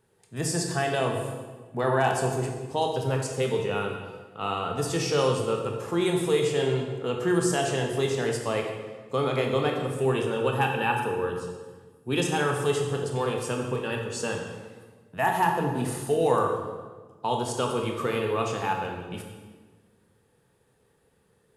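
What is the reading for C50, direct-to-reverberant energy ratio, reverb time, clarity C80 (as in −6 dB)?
4.0 dB, 1.5 dB, 1.4 s, 6.0 dB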